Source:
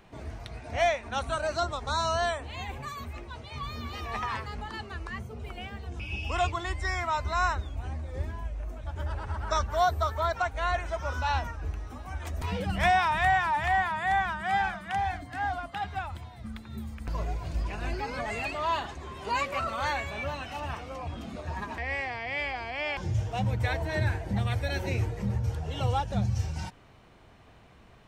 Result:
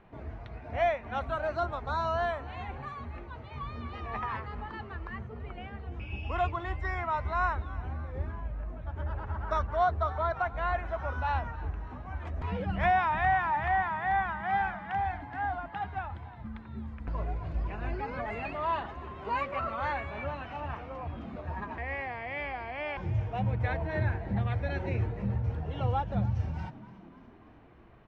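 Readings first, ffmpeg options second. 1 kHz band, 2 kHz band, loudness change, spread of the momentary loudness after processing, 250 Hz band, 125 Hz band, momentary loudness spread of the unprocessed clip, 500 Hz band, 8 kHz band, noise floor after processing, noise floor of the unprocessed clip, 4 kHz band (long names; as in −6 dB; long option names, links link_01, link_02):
−1.5 dB, −3.5 dB, −2.0 dB, 13 LU, −1.0 dB, −1.5 dB, 12 LU, −1.5 dB, below −20 dB, −48 dBFS, −54 dBFS, −11.5 dB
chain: -filter_complex "[0:a]lowpass=2000,asplit=2[link_01][link_02];[link_02]asplit=5[link_03][link_04][link_05][link_06][link_07];[link_03]adelay=293,afreqshift=49,volume=-19dB[link_08];[link_04]adelay=586,afreqshift=98,volume=-23.6dB[link_09];[link_05]adelay=879,afreqshift=147,volume=-28.2dB[link_10];[link_06]adelay=1172,afreqshift=196,volume=-32.7dB[link_11];[link_07]adelay=1465,afreqshift=245,volume=-37.3dB[link_12];[link_08][link_09][link_10][link_11][link_12]amix=inputs=5:normalize=0[link_13];[link_01][link_13]amix=inputs=2:normalize=0,volume=-1.5dB"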